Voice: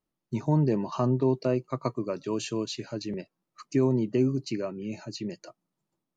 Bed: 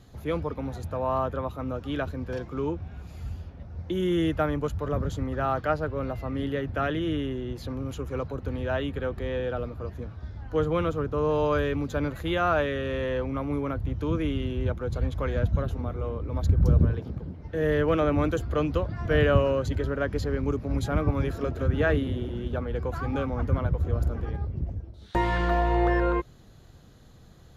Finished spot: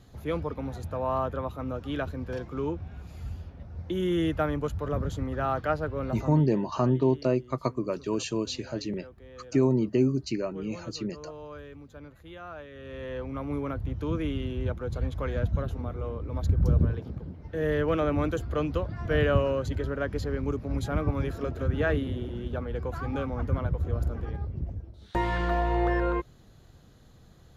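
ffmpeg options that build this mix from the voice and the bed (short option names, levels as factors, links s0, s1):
-filter_complex "[0:a]adelay=5800,volume=1.12[s0];[1:a]volume=5.01,afade=t=out:st=6.21:d=0.24:silence=0.149624,afade=t=in:st=12.7:d=0.86:silence=0.16788[s1];[s0][s1]amix=inputs=2:normalize=0"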